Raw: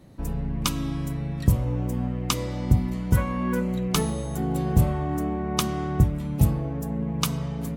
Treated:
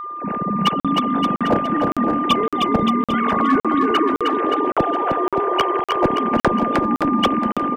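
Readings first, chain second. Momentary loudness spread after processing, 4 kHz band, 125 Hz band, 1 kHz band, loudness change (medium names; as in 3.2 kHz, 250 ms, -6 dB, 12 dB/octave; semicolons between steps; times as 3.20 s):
3 LU, +8.0 dB, -8.0 dB, +16.5 dB, +7.0 dB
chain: formants replaced by sine waves; in parallel at +2.5 dB: level held to a coarse grid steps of 19 dB; on the sum: Chebyshev shaper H 5 -41 dB, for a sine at 0 dBFS; phase dispersion lows, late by 44 ms, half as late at 790 Hz; whistle 1.2 kHz -27 dBFS; overload inside the chain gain 10.5 dB; on a send: bouncing-ball echo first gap 310 ms, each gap 0.85×, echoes 5; on the sum: crackling interface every 0.56 s, samples 2048, zero, from 0.80 s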